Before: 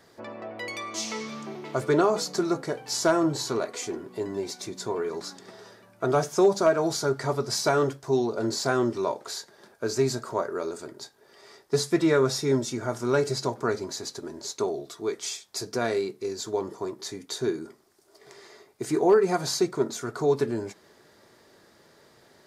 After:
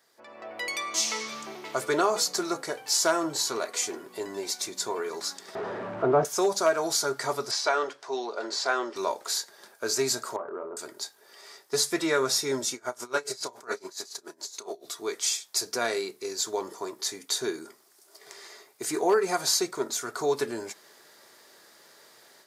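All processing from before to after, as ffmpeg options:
-filter_complex "[0:a]asettb=1/sr,asplit=3[s0][s1][s2];[s0]atrim=end=5.554[s3];[s1]atrim=start=5.55:end=6.25,asetpts=PTS-STARTPTS,afade=t=in:d=0.004:c=qsin,afade=t=out:st=0.696:d=0.004:c=qsin,aeval=exprs='val(0)+0.5*0.0355*sgn(val(0))':c=same,lowpass=1200,lowshelf=f=490:g=10[s4];[s2]atrim=start=6.246[s5];[s3][s4]acrossfade=d=0.004:c1=hsin:c2=qsin[s6];[s6][s5]acrossfade=d=0.004:c1=qsin:c2=hsin,asettb=1/sr,asplit=3[s7][s8][s9];[s7]atrim=end=7.514[s10];[s8]atrim=start=7.51:end=8.96,asetpts=PTS-STARTPTS,afade=t=in:d=0.004:c=qsin,afade=t=out:st=1.446:d=0.004:c=qsin,highpass=420,lowpass=4200,acompressor=mode=upward:threshold=0.00891:ratio=2.5:attack=3.2:release=140:knee=2.83:detection=peak[s11];[s9]atrim=start=8.956[s12];[s10][s11]acrossfade=d=0.004:c1=hsin:c2=qsin[s13];[s13][s12]acrossfade=d=0.004:c1=qsin:c2=hsin,asettb=1/sr,asplit=3[s14][s15][s16];[s14]atrim=end=10.364[s17];[s15]atrim=start=10.36:end=10.77,asetpts=PTS-STARTPTS,afade=t=in:d=0.004:c=qsin,afade=t=out:st=0.406:d=0.004:c=qsin,lowpass=f=1200:w=0.5412,lowpass=f=1200:w=1.3066,acompressor=threshold=0.0316:ratio=4:attack=3.2:release=140:knee=1:detection=peak,asplit=2[s18][s19];[s19]adelay=26,volume=0.398[s20];[s18][s20]amix=inputs=2:normalize=0,atrim=end_sample=18081[s21];[s16]atrim=start=10.766[s22];[s17][s21]acrossfade=d=0.004:c1=hsin:c2=qsin[s23];[s23][s22]acrossfade=d=0.004:c1=qsin:c2=hsin,asettb=1/sr,asplit=3[s24][s25][s26];[s24]atrim=end=12.744[s27];[s25]atrim=start=12.74:end=14.85,asetpts=PTS-STARTPTS,afade=t=in:d=0.004:c=qsin,afade=t=out:st=2.106:d=0.004:c=qsin,highpass=f=200:p=1,asplit=2[s28][s29];[s29]adelay=32,volume=0.531[s30];[s28][s30]amix=inputs=2:normalize=0,atrim=end_sample=93051,aeval=exprs='val(0)*pow(10,-23*(0.5-0.5*cos(2*PI*7.1*n/s))/20)':c=same[s31];[s26]atrim=start=14.846[s32];[s27][s31]acrossfade=d=0.004:c1=hsin:c2=qsin[s33];[s33][s32]acrossfade=d=0.004:c1=qsin:c2=hsin,highpass=f=870:p=1,highshelf=f=7700:g=8.5,dynaudnorm=f=270:g=3:m=3.98,volume=0.398"

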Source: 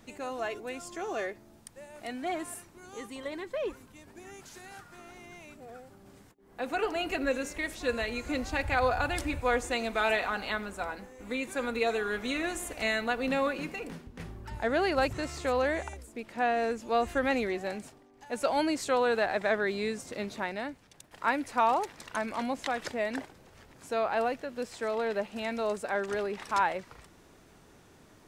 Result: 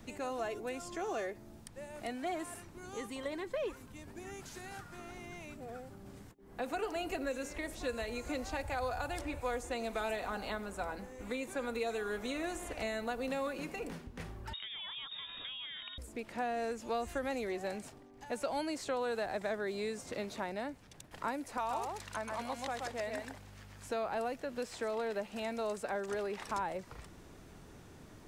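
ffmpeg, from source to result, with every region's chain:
-filter_complex "[0:a]asettb=1/sr,asplit=3[s0][s1][s2];[s0]atrim=end=14.534[s3];[s1]atrim=start=14.53:end=15.98,asetpts=PTS-STARTPTS,afade=t=in:d=0.004:c=qsin,afade=t=out:st=1.446:d=0.004:c=qsin,acompressor=threshold=0.0224:ratio=6:attack=3.2:release=140:knee=1:detection=peak,lowpass=f=3200:t=q:w=0.5098,lowpass=f=3200:t=q:w=0.6013,lowpass=f=3200:t=q:w=0.9,lowpass=f=3200:t=q:w=2.563,afreqshift=-3800[s4];[s2]atrim=start=15.976[s5];[s3][s4]acrossfade=d=0.004:c1=hsin:c2=qsin[s6];[s6][s5]acrossfade=d=0.004:c1=qsin:c2=hsin,asettb=1/sr,asplit=3[s7][s8][s9];[s7]atrim=end=21.574[s10];[s8]atrim=start=21.57:end=23.89,asetpts=PTS-STARTPTS,afade=t=in:d=0.004:c=qsin,afade=t=out:st=2.316:d=0.004:c=qsin,highpass=f=970:p=1,aeval=exprs='val(0)+0.00141*(sin(2*PI*50*n/s)+sin(2*PI*2*50*n/s)/2+sin(2*PI*3*50*n/s)/3+sin(2*PI*4*50*n/s)/4+sin(2*PI*5*50*n/s)/5)':c=same,aecho=1:1:129:0.596,atrim=end_sample=102312[s11];[s9]atrim=start=23.886[s12];[s10][s11]acrossfade=d=0.004:c1=hsin:c2=qsin[s13];[s13][s12]acrossfade=d=0.004:c1=qsin:c2=hsin,lowshelf=f=230:g=7,acrossover=split=430|1000|5400[s14][s15][s16][s17];[s14]acompressor=threshold=0.00562:ratio=4[s18];[s15]acompressor=threshold=0.0126:ratio=4[s19];[s16]acompressor=threshold=0.00501:ratio=4[s20];[s17]acompressor=threshold=0.00282:ratio=4[s21];[s18][s19][s20][s21]amix=inputs=4:normalize=0"

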